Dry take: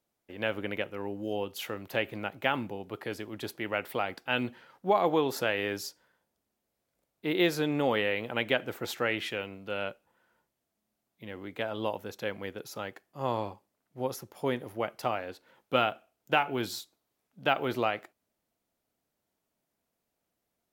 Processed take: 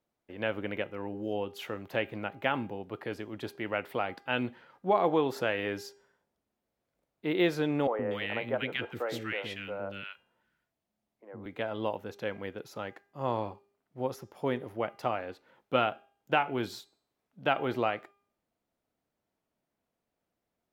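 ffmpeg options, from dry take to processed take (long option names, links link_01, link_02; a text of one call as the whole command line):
ffmpeg -i in.wav -filter_complex "[0:a]asettb=1/sr,asplit=3[link_01][link_02][link_03];[link_01]atrim=end=7.874[link_04];[link_02]atrim=start=7.87:end=11.46,asetpts=PTS-STARTPTS,afade=type=in:duration=0.004:curve=qsin,afade=type=out:start_time=3.586:duration=0.004:curve=qsin,acrossover=split=360|1400[link_05][link_06][link_07];[link_05]adelay=120[link_08];[link_07]adelay=240[link_09];[link_08][link_06][link_09]amix=inputs=3:normalize=0,atrim=end_sample=158319[link_10];[link_03]atrim=start=11.456[link_11];[link_04][link_10]acrossfade=duration=0.004:curve1=hsin:curve2=qsin[link_12];[link_12][link_11]acrossfade=duration=0.004:curve1=qsin:curve2=hsin,highshelf=frequency=4500:gain=-11.5,bandreject=frequency=402.2:width_type=h:width=4,bandreject=frequency=804.4:width_type=h:width=4,bandreject=frequency=1206.6:width_type=h:width=4,bandreject=frequency=1608.8:width_type=h:width=4,bandreject=frequency=2011:width_type=h:width=4,bandreject=frequency=2413.2:width_type=h:width=4,bandreject=frequency=2815.4:width_type=h:width=4,bandreject=frequency=3217.6:width_type=h:width=4,bandreject=frequency=3619.8:width_type=h:width=4,bandreject=frequency=4022:width_type=h:width=4,bandreject=frequency=4424.2:width_type=h:width=4,bandreject=frequency=4826.4:width_type=h:width=4,bandreject=frequency=5228.6:width_type=h:width=4,bandreject=frequency=5630.8:width_type=h:width=4,bandreject=frequency=6033:width_type=h:width=4,bandreject=frequency=6435.2:width_type=h:width=4,bandreject=frequency=6837.4:width_type=h:width=4,bandreject=frequency=7239.6:width_type=h:width=4,bandreject=frequency=7641.8:width_type=h:width=4,bandreject=frequency=8044:width_type=h:width=4,bandreject=frequency=8446.2:width_type=h:width=4,bandreject=frequency=8848.4:width_type=h:width=4,bandreject=frequency=9250.6:width_type=h:width=4" out.wav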